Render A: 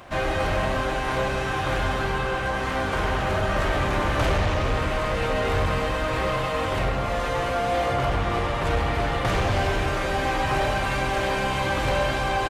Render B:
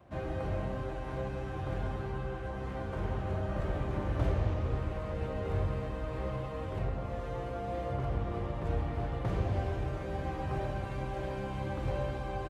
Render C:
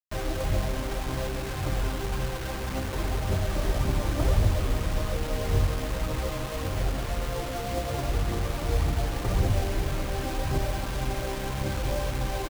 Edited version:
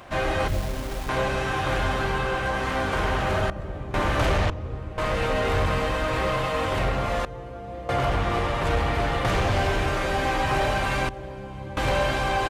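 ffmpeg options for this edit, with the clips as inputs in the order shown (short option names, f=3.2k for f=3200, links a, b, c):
-filter_complex "[1:a]asplit=4[a][b][c][d];[0:a]asplit=6[e][f][g][h][i][j];[e]atrim=end=0.482[k];[2:a]atrim=start=0.478:end=1.092[l];[f]atrim=start=1.088:end=3.502[m];[a]atrim=start=3.498:end=3.942[n];[g]atrim=start=3.938:end=4.502[o];[b]atrim=start=4.498:end=4.982[p];[h]atrim=start=4.978:end=7.252[q];[c]atrim=start=7.248:end=7.892[r];[i]atrim=start=7.888:end=11.092[s];[d]atrim=start=11.088:end=11.772[t];[j]atrim=start=11.768[u];[k][l]acrossfade=d=0.004:c1=hsin:c2=hsin[v];[v][m]acrossfade=d=0.004:c1=hsin:c2=hsin[w];[w][n]acrossfade=d=0.004:c1=hsin:c2=hsin[x];[x][o]acrossfade=d=0.004:c1=hsin:c2=hsin[y];[y][p]acrossfade=d=0.004:c1=hsin:c2=hsin[z];[z][q]acrossfade=d=0.004:c1=hsin:c2=hsin[aa];[aa][r]acrossfade=d=0.004:c1=hsin:c2=hsin[ab];[ab][s]acrossfade=d=0.004:c1=hsin:c2=hsin[ac];[ac][t]acrossfade=d=0.004:c1=hsin:c2=hsin[ad];[ad][u]acrossfade=d=0.004:c1=hsin:c2=hsin"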